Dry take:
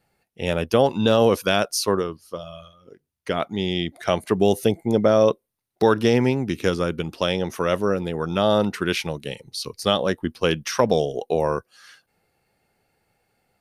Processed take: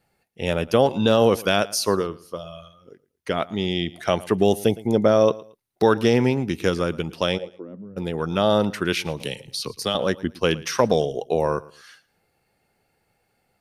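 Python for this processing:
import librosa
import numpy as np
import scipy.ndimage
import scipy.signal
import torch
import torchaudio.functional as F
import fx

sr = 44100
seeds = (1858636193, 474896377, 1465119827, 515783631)

y = fx.bandpass_q(x, sr, hz=fx.line((7.37, 650.0), (7.96, 120.0)), q=7.2, at=(7.37, 7.96), fade=0.02)
y = fx.echo_feedback(y, sr, ms=113, feedback_pct=26, wet_db=-20.5)
y = fx.band_squash(y, sr, depth_pct=70, at=(9.2, 9.95))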